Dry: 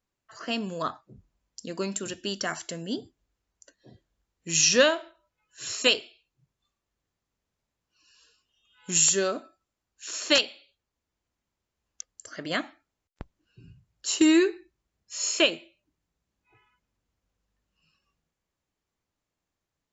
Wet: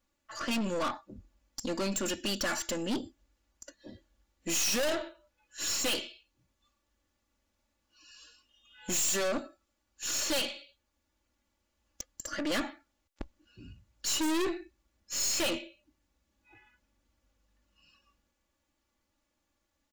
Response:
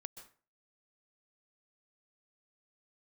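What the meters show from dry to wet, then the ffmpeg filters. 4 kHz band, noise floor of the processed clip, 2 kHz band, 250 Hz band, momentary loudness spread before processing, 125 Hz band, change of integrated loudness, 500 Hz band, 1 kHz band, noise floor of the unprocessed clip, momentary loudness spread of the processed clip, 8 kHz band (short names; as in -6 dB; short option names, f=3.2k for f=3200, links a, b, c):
-6.5 dB, -80 dBFS, -7.0 dB, -6.5 dB, 21 LU, -4.0 dB, -6.5 dB, -6.5 dB, -2.5 dB, under -85 dBFS, 19 LU, n/a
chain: -af "aecho=1:1:3.5:0.94,aeval=exprs='(tanh(44.7*val(0)+0.45)-tanh(0.45))/44.7':c=same,volume=4.5dB"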